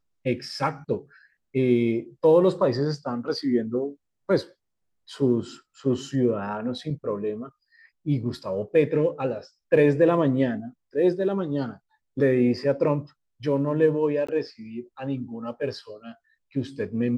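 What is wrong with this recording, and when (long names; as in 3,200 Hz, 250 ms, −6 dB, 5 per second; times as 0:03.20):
0:14.27–0:14.29: drop-out 15 ms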